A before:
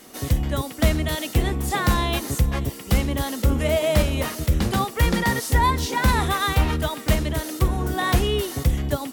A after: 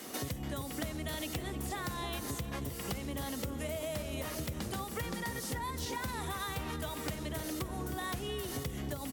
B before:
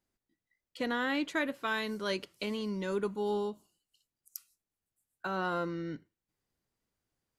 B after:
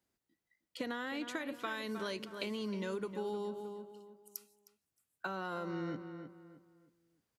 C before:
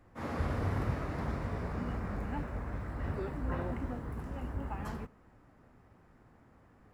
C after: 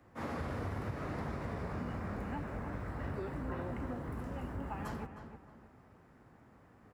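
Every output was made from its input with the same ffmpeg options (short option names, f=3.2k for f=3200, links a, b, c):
-filter_complex "[0:a]acrossover=split=100|5800[a][b][c];[a]acompressor=threshold=-35dB:ratio=4[d];[b]acompressor=threshold=-32dB:ratio=4[e];[c]acompressor=threshold=-40dB:ratio=4[f];[d][e][f]amix=inputs=3:normalize=0,highpass=42,lowshelf=f=63:g=-6.5,asplit=2[g][h];[h]adelay=311,lowpass=f=2.7k:p=1,volume=-10dB,asplit=2[i][j];[j]adelay=311,lowpass=f=2.7k:p=1,volume=0.33,asplit=2[k][l];[l]adelay=311,lowpass=f=2.7k:p=1,volume=0.33,asplit=2[m][n];[n]adelay=311,lowpass=f=2.7k:p=1,volume=0.33[o];[i][k][m][o]amix=inputs=4:normalize=0[p];[g][p]amix=inputs=2:normalize=0,acompressor=threshold=-36dB:ratio=5,volume=1dB"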